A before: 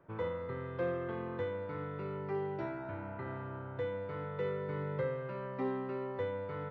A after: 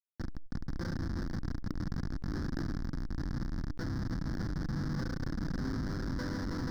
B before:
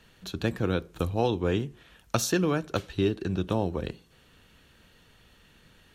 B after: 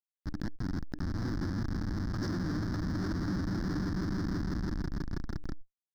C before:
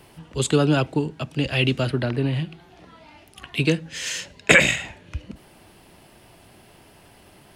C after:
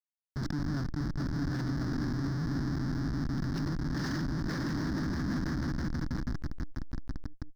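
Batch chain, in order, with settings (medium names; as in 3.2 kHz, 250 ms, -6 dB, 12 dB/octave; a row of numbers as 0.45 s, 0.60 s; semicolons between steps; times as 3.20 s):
compression 12:1, threshold -29 dBFS; on a send: echo with a slow build-up 162 ms, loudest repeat 5, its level -7.5 dB; on the sum: Schmitt trigger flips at -30 dBFS; FFT filter 110 Hz 0 dB, 300 Hz +6 dB, 440 Hz -11 dB, 770 Hz -8 dB, 1.7 kHz +2 dB, 2.6 kHz -22 dB, 5.2 kHz +4 dB, 7.5 kHz -17 dB; decay stretcher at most 24 dB/s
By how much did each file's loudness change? +1.0 LU, -6.0 LU, -12.5 LU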